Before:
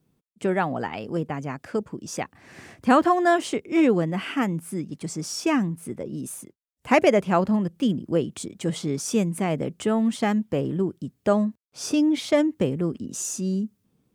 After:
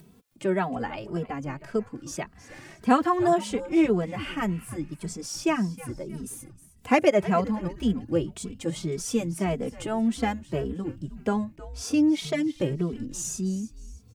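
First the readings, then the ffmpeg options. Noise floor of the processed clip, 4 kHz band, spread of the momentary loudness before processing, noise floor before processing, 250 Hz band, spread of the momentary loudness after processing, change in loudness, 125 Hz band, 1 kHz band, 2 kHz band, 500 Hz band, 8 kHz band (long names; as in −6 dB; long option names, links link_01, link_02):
−54 dBFS, −3.0 dB, 13 LU, −73 dBFS, −2.5 dB, 14 LU, −3.0 dB, −2.5 dB, −2.5 dB, −4.0 dB, −3.0 dB, −2.5 dB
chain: -filter_complex "[0:a]acompressor=mode=upward:threshold=-37dB:ratio=2.5,asplit=4[link_01][link_02][link_03][link_04];[link_02]adelay=314,afreqshift=-150,volume=-16dB[link_05];[link_03]adelay=628,afreqshift=-300,volume=-24.4dB[link_06];[link_04]adelay=942,afreqshift=-450,volume=-32.8dB[link_07];[link_01][link_05][link_06][link_07]amix=inputs=4:normalize=0,asplit=2[link_08][link_09];[link_09]adelay=2.7,afreqshift=1.8[link_10];[link_08][link_10]amix=inputs=2:normalize=1"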